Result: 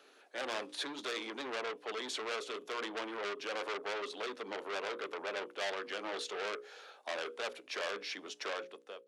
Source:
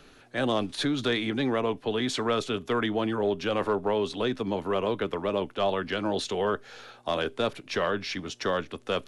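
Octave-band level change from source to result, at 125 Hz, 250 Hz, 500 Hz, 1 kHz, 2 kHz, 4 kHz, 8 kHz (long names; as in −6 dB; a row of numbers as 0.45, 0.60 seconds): below −30 dB, −19.0 dB, −12.5 dB, −10.0 dB, −6.0 dB, −8.0 dB, −5.5 dB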